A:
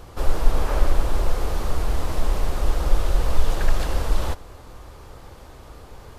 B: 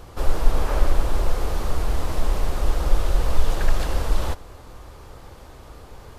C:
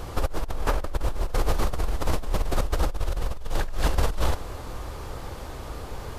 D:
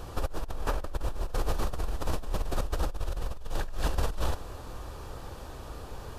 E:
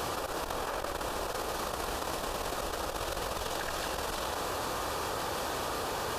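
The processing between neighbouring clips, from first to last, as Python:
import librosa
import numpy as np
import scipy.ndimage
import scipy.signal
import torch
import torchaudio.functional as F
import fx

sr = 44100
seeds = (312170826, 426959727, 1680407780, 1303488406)

y1 = x
y2 = fx.over_compress(y1, sr, threshold_db=-24.0, ratio=-1.0)
y3 = fx.notch(y2, sr, hz=2100.0, q=8.5)
y3 = F.gain(torch.from_numpy(y3), -5.5).numpy()
y4 = fx.highpass(y3, sr, hz=580.0, slope=6)
y4 = fx.env_flatten(y4, sr, amount_pct=100)
y4 = F.gain(torch.from_numpy(y4), -3.5).numpy()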